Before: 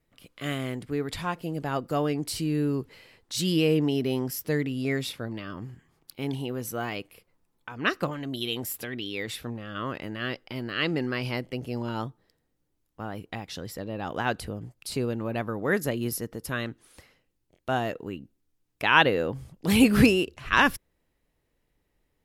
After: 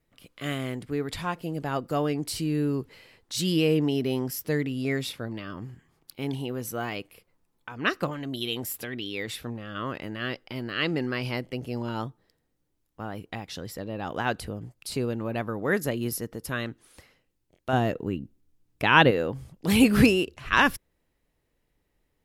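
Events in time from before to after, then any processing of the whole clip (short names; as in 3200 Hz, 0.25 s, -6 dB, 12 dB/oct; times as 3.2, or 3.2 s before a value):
17.73–19.11 low shelf 390 Hz +9 dB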